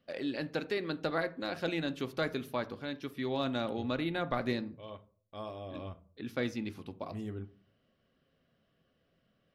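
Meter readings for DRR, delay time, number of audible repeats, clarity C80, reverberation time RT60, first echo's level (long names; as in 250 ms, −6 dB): 9.5 dB, no echo audible, no echo audible, 23.5 dB, 0.45 s, no echo audible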